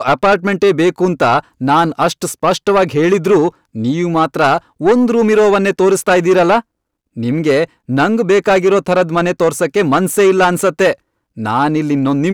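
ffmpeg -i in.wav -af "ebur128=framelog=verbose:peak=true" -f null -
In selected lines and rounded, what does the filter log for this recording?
Integrated loudness:
  I:         -13.3 LUFS
  Threshold: -23.4 LUFS
Loudness range:
  LRA:         1.5 LU
  Threshold: -33.4 LUFS
  LRA low:   -14.1 LUFS
  LRA high:  -12.7 LUFS
True peak:
  Peak:       -4.6 dBFS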